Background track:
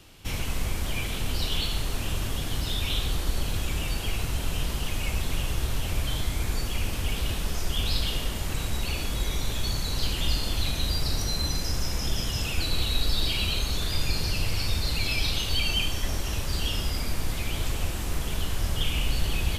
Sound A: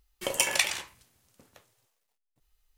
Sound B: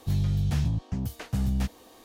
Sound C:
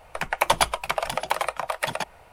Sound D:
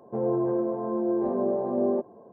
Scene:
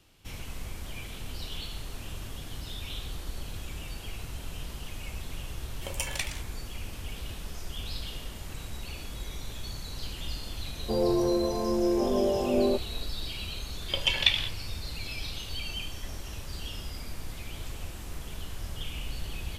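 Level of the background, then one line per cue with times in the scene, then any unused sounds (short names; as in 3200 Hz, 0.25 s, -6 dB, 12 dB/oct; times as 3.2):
background track -10 dB
5.6 add A -8.5 dB
10.76 add D
13.67 add A -6.5 dB + synth low-pass 3400 Hz, resonance Q 7
not used: B, C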